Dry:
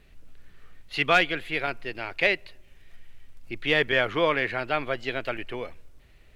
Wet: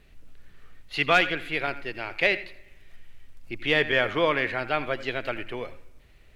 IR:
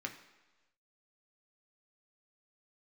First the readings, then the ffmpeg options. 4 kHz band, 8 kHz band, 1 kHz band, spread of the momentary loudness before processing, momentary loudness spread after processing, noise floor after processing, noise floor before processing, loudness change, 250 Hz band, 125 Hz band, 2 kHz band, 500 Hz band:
0.0 dB, can't be measured, 0.0 dB, 13 LU, 14 LU, −54 dBFS, −54 dBFS, 0.0 dB, +0.5 dB, 0.0 dB, 0.0 dB, 0.0 dB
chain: -filter_complex "[0:a]asplit=2[link_01][link_02];[1:a]atrim=start_sample=2205,adelay=82[link_03];[link_02][link_03]afir=irnorm=-1:irlink=0,volume=-14dB[link_04];[link_01][link_04]amix=inputs=2:normalize=0"

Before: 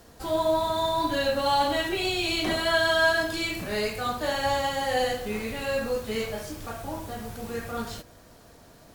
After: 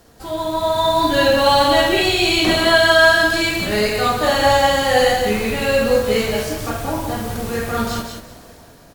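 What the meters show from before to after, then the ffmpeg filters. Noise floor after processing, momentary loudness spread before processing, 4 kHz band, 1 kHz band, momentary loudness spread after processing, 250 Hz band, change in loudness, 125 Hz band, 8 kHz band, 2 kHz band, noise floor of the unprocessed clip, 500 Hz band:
−45 dBFS, 13 LU, +11.0 dB, +9.5 dB, 12 LU, +11.0 dB, +10.5 dB, +11.5 dB, +11.0 dB, +11.0 dB, −53 dBFS, +10.5 dB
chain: -filter_complex "[0:a]asplit=2[link_01][link_02];[link_02]aecho=0:1:48|178:0.422|0.501[link_03];[link_01][link_03]amix=inputs=2:normalize=0,dynaudnorm=framelen=230:gausssize=7:maxgain=9dB,asplit=2[link_04][link_05];[link_05]aecho=0:1:194:0.211[link_06];[link_04][link_06]amix=inputs=2:normalize=0,volume=1.5dB"

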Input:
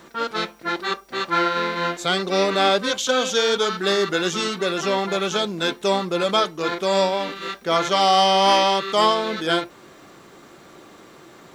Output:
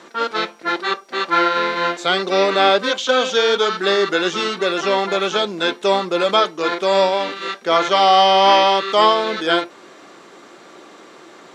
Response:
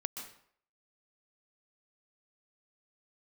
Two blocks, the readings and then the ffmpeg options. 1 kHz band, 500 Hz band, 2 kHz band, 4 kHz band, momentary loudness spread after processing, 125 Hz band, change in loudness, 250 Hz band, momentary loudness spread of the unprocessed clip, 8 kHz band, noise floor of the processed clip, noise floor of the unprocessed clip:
+4.5 dB, +4.0 dB, +4.5 dB, +3.0 dB, 10 LU, −3.0 dB, +4.0 dB, +1.5 dB, 10 LU, −3.0 dB, −44 dBFS, −47 dBFS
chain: -filter_complex "[0:a]highpass=270,lowpass=7900,acrossover=split=4400[link_01][link_02];[link_02]acompressor=threshold=-39dB:ratio=4:attack=1:release=60[link_03];[link_01][link_03]amix=inputs=2:normalize=0,volume=4.5dB"

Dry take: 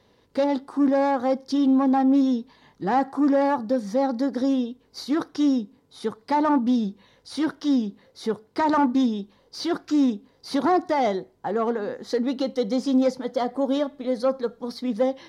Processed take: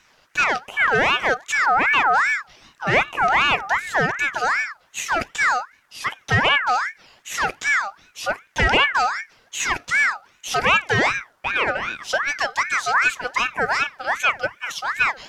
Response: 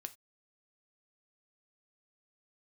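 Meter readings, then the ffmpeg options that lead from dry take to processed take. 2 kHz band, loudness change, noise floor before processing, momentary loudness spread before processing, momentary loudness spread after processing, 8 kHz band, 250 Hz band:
+21.0 dB, +4.0 dB, −62 dBFS, 11 LU, 11 LU, can't be measured, −15.0 dB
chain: -af "tiltshelf=frequency=970:gain=-4.5,aeval=exprs='val(0)*sin(2*PI*1500*n/s+1500*0.35/2.6*sin(2*PI*2.6*n/s))':channel_layout=same,volume=7.5dB"

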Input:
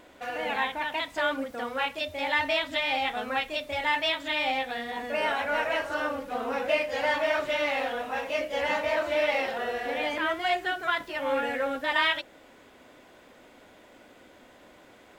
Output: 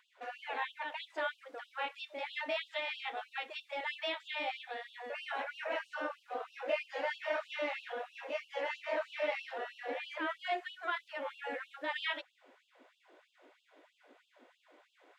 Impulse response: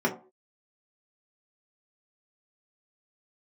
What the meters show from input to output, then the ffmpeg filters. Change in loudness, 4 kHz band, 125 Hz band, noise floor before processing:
−10.5 dB, −11.0 dB, below −30 dB, −55 dBFS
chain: -af "aemphasis=mode=reproduction:type=bsi,afftfilt=real='re*gte(b*sr/1024,250*pow(2700/250,0.5+0.5*sin(2*PI*3.1*pts/sr)))':imag='im*gte(b*sr/1024,250*pow(2700/250,0.5+0.5*sin(2*PI*3.1*pts/sr)))':win_size=1024:overlap=0.75,volume=-8dB"

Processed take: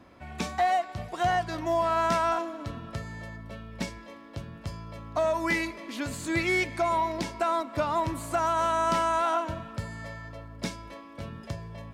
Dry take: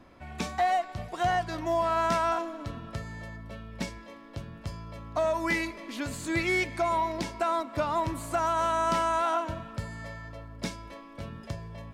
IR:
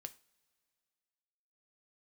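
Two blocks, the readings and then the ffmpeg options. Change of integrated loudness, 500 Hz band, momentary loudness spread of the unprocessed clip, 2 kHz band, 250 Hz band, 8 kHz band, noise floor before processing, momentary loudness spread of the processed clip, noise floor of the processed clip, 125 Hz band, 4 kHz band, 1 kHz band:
+1.0 dB, +1.0 dB, 17 LU, +1.0 dB, +1.0 dB, +1.0 dB, −48 dBFS, 17 LU, −47 dBFS, +1.0 dB, +1.0 dB, +1.0 dB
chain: -af "highpass=47,volume=1dB"

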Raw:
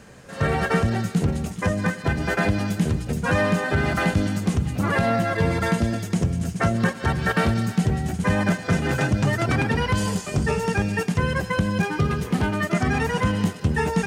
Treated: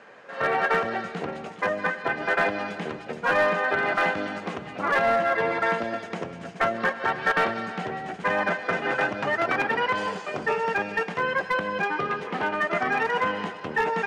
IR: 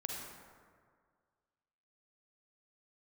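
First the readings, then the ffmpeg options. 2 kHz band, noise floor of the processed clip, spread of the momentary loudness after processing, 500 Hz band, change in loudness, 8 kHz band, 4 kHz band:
+2.0 dB, −40 dBFS, 10 LU, −0.5 dB, −2.5 dB, −14.5 dB, −3.5 dB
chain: -filter_complex "[0:a]highpass=530,lowpass=2400,aeval=exprs='clip(val(0),-1,0.0944)':channel_layout=same,asplit=2[link_01][link_02];[1:a]atrim=start_sample=2205,asetrate=22050,aresample=44100[link_03];[link_02][link_03]afir=irnorm=-1:irlink=0,volume=-21dB[link_04];[link_01][link_04]amix=inputs=2:normalize=0,volume=2.5dB"

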